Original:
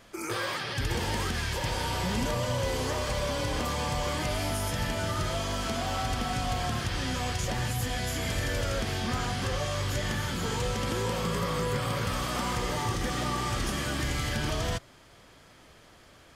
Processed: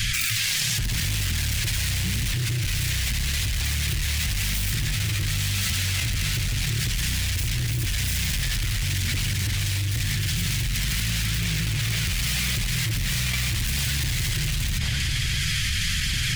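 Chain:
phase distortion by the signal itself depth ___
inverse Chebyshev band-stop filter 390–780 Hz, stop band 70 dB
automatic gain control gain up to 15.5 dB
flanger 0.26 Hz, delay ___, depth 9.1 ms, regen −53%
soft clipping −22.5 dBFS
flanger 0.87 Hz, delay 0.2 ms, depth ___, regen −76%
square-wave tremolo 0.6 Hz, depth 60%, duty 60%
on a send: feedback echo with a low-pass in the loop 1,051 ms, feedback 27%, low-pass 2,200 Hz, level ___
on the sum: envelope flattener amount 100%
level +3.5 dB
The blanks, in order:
0.27 ms, 1.8 ms, 2 ms, −23.5 dB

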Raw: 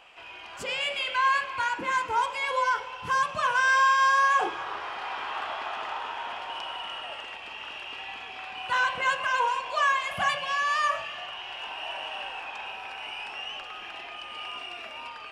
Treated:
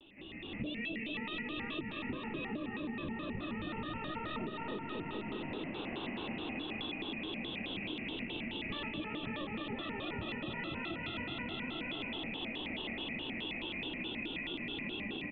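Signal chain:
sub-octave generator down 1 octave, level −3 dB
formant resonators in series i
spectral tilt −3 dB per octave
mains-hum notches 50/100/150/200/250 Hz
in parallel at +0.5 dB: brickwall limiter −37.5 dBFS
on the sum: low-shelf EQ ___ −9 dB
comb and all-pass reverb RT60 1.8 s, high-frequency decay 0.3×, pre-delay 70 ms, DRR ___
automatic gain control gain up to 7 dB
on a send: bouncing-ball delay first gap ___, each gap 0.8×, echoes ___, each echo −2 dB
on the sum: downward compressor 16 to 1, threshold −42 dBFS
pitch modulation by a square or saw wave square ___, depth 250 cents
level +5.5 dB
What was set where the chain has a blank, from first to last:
97 Hz, 15.5 dB, 300 ms, 10, 4.7 Hz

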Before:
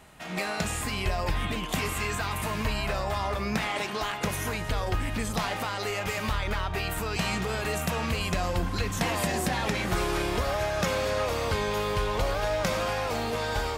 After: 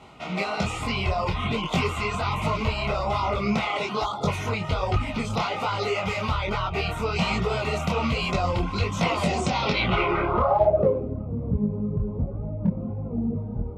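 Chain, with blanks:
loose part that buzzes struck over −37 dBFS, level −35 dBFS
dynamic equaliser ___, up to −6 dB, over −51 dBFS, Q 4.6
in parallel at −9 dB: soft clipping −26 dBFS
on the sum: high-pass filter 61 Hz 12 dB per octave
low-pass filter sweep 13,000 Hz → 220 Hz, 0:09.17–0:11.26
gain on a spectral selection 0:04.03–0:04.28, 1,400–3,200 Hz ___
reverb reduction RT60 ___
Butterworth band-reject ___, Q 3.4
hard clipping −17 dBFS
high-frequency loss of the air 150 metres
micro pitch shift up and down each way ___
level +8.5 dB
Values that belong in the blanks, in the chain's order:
300 Hz, −18 dB, 0.55 s, 1,700 Hz, 42 cents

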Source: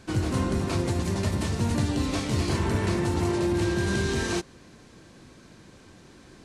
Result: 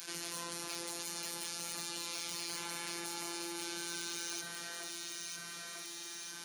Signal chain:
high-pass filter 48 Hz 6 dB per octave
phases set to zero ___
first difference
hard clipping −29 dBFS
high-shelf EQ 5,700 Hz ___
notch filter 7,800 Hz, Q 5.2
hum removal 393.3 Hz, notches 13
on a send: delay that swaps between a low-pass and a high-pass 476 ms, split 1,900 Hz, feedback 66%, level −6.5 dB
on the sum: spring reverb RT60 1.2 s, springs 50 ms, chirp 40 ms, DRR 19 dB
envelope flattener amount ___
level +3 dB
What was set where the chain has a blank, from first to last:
171 Hz, −2 dB, 70%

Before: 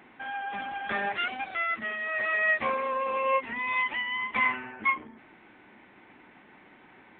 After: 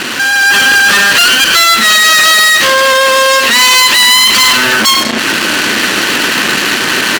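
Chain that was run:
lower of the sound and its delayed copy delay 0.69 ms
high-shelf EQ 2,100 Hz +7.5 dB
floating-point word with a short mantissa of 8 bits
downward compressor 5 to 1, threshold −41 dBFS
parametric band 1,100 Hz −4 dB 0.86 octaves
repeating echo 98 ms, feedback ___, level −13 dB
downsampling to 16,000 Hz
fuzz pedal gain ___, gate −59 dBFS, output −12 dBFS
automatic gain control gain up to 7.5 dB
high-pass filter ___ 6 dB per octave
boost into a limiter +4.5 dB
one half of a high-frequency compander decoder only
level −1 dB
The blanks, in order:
28%, 55 dB, 360 Hz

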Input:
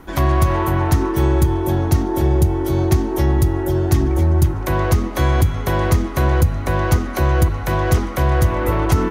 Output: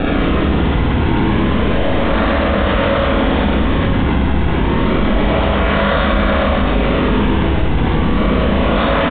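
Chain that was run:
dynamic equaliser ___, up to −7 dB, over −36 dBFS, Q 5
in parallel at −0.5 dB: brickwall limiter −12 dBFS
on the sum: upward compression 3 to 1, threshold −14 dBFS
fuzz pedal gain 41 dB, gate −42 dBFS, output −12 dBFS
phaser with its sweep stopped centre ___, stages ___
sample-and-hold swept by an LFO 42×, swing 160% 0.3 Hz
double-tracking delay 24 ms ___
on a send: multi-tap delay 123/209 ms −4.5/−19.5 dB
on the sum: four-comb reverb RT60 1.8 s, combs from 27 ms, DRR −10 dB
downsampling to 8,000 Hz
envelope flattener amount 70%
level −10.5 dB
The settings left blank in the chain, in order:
330 Hz, 560 Hz, 8, −10.5 dB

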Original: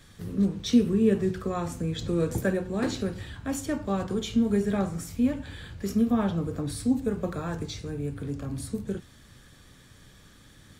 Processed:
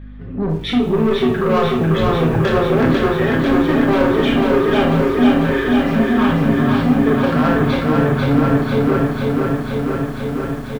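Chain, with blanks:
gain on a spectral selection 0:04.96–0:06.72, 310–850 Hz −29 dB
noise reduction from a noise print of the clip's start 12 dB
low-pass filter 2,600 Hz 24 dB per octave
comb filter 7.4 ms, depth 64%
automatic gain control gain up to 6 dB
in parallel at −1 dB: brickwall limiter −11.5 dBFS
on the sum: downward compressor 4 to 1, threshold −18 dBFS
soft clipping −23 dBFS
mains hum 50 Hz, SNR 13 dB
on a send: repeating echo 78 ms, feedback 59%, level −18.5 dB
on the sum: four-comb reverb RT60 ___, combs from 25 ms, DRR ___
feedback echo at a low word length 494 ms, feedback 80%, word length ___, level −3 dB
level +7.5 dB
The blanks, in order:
0.3 s, 2.5 dB, 9 bits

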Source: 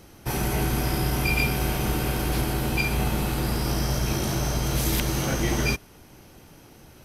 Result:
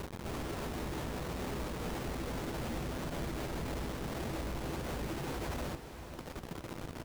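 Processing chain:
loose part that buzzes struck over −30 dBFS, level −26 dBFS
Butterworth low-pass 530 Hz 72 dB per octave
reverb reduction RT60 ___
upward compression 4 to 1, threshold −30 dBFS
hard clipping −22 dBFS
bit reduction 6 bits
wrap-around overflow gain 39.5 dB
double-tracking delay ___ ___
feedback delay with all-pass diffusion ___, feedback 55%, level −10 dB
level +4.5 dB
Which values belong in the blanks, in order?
1.2 s, 12 ms, −13 dB, 504 ms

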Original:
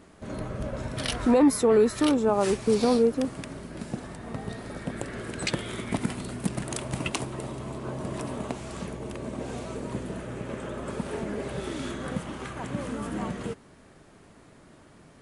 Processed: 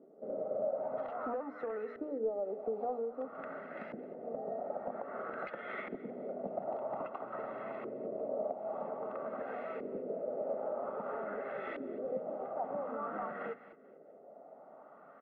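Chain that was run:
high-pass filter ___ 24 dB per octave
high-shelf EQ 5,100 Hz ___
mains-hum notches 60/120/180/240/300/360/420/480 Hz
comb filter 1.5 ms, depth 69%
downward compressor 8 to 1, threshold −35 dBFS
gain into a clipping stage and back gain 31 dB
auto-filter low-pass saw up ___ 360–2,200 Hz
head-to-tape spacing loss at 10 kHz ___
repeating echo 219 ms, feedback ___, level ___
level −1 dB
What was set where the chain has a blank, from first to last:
280 Hz, −10 dB, 0.51 Hz, 23 dB, 39%, −19 dB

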